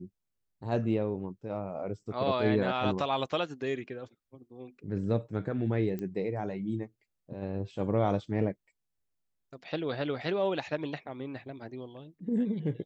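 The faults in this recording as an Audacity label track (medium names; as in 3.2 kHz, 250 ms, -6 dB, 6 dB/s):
5.990000	5.990000	pop -25 dBFS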